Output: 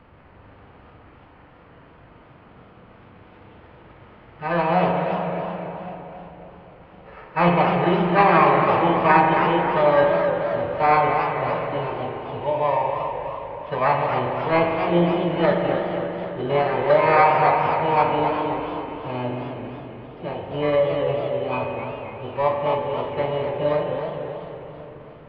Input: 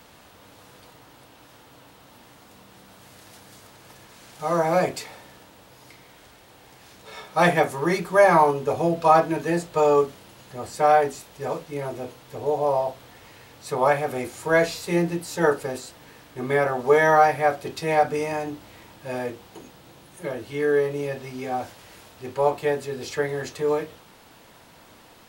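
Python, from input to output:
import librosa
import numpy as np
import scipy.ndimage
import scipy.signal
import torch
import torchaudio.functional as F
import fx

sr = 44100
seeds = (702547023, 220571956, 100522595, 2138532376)

p1 = fx.bit_reversed(x, sr, seeds[0], block=16)
p2 = scipy.signal.sosfilt(scipy.signal.ellip(4, 1.0, 60, 2600.0, 'lowpass', fs=sr, output='sos'), p1)
p3 = fx.low_shelf(p2, sr, hz=130.0, db=11.5)
p4 = fx.formant_shift(p3, sr, semitones=4)
p5 = p4 + fx.echo_split(p4, sr, split_hz=700.0, low_ms=554, high_ms=276, feedback_pct=52, wet_db=-16.0, dry=0)
p6 = fx.rev_spring(p5, sr, rt60_s=3.1, pass_ms=(40,), chirp_ms=45, drr_db=2.0)
y = fx.echo_warbled(p6, sr, ms=265, feedback_pct=51, rate_hz=2.8, cents=204, wet_db=-8.5)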